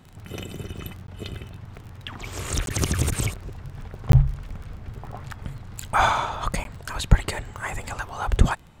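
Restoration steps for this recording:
click removal
repair the gap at 0:01.07/0:02.66/0:04.12/0:06.64, 12 ms

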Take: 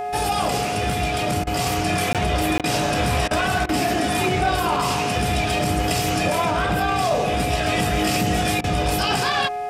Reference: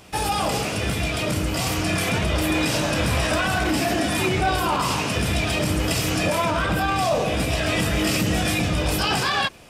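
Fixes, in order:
hum removal 418.6 Hz, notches 6
notch filter 720 Hz, Q 30
repair the gap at 0:02.13/0:02.58, 17 ms
repair the gap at 0:01.44/0:02.61/0:03.28/0:03.66/0:08.61, 28 ms

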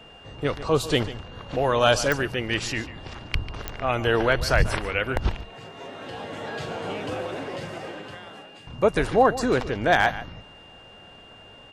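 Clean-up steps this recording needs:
clipped peaks rebuilt −8 dBFS
click removal
notch filter 2,800 Hz, Q 30
echo removal 143 ms −15 dB

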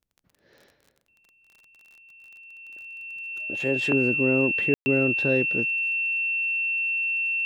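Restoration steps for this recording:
click removal
notch filter 2,700 Hz, Q 30
ambience match 0:04.74–0:04.86

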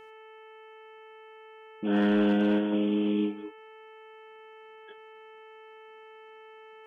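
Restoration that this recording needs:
clipped peaks rebuilt −17.5 dBFS
hum removal 438.3 Hz, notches 7

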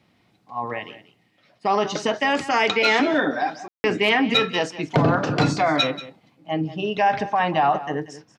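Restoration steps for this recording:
clipped peaks rebuilt −7.5 dBFS
ambience match 0:03.68–0:03.84
echo removal 185 ms −15.5 dB

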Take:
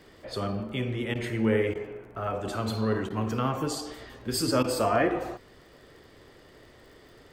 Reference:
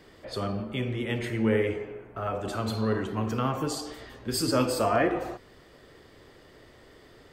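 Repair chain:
click removal
repair the gap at 0:01.14/0:01.74/0:03.09/0:04.63, 11 ms

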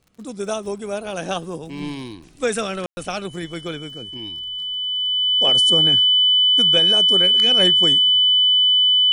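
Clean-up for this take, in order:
click removal
notch filter 3,000 Hz, Q 30
ambience match 0:02.86–0:02.97

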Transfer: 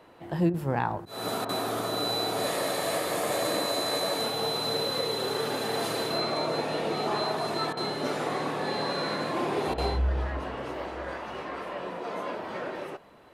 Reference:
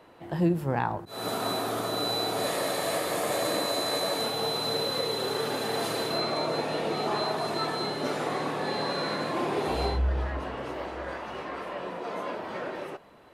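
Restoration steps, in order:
repair the gap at 0:00.50/0:01.45/0:07.73/0:09.74, 39 ms

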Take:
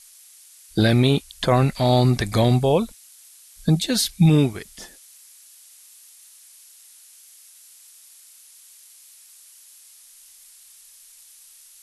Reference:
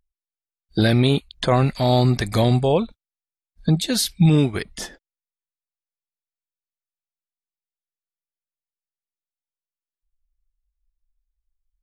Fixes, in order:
noise reduction from a noise print 30 dB
level 0 dB, from 0:04.53 +8 dB

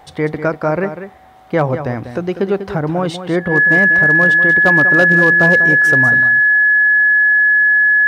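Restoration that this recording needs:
clipped peaks rebuilt −4 dBFS
notch filter 1,700 Hz, Q 30
echo removal 195 ms −10.5 dB

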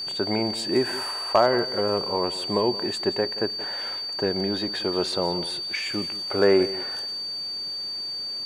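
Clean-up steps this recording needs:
clipped peaks rebuilt −8.5 dBFS
notch filter 4,600 Hz, Q 30
echo removal 176 ms −15.5 dB

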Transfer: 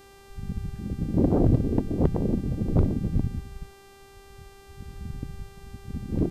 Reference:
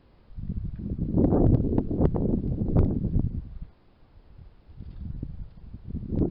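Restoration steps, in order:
hum removal 394.6 Hz, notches 37
downward expander −42 dBFS, range −21 dB

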